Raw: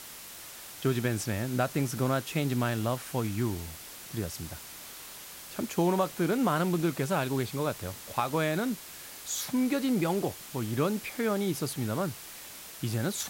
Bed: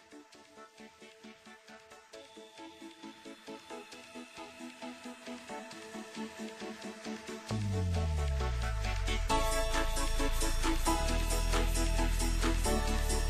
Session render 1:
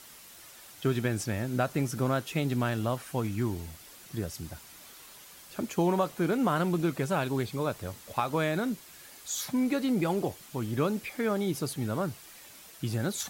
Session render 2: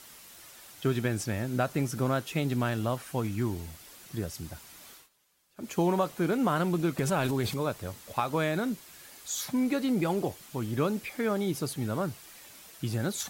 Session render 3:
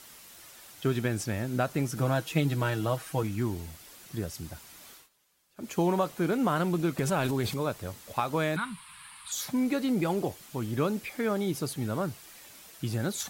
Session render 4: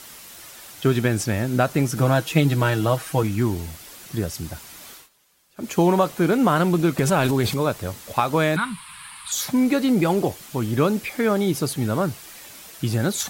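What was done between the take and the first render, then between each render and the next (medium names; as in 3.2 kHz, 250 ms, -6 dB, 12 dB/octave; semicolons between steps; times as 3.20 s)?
noise reduction 7 dB, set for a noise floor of -46 dBFS
4.93–5.72 s: dip -20.5 dB, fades 0.16 s; 6.98–7.58 s: transient shaper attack +1 dB, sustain +9 dB
1.96–3.23 s: comb 6.3 ms; 8.56–9.32 s: FFT filter 180 Hz 0 dB, 360 Hz -24 dB, 620 Hz -21 dB, 1 kHz +12 dB, 1.7 kHz +2 dB, 2.6 kHz +6 dB, 4.2 kHz +1 dB, 6.4 kHz -18 dB, 9.3 kHz +9 dB, 14 kHz -20 dB
trim +8.5 dB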